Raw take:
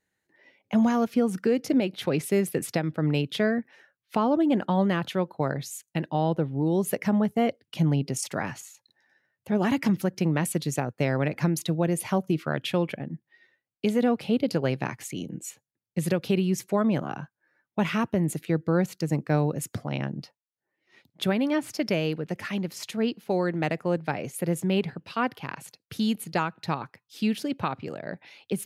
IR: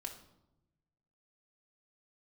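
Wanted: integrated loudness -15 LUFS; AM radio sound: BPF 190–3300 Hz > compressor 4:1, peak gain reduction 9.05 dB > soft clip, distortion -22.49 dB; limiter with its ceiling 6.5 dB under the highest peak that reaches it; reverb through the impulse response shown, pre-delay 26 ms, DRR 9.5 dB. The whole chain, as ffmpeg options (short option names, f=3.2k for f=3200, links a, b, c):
-filter_complex "[0:a]alimiter=limit=-17dB:level=0:latency=1,asplit=2[a][b];[1:a]atrim=start_sample=2205,adelay=26[c];[b][c]afir=irnorm=-1:irlink=0,volume=-7dB[d];[a][d]amix=inputs=2:normalize=0,highpass=190,lowpass=3.3k,acompressor=threshold=-29dB:ratio=4,asoftclip=threshold=-22dB,volume=21dB"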